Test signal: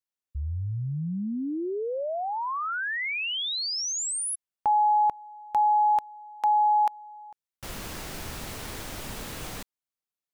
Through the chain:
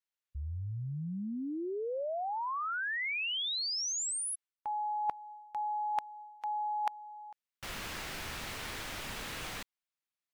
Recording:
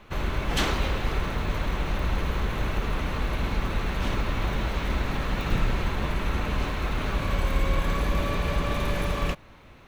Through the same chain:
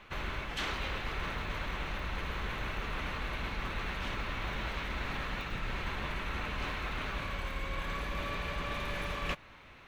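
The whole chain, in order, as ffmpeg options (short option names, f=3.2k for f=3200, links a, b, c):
-af "equalizer=f=2.2k:t=o:w=2.7:g=9,areverse,acompressor=threshold=-26dB:ratio=20:attack=86:release=353:knee=1:detection=rms,areverse,volume=-7.5dB" -ar 44100 -c:a aac -b:a 160k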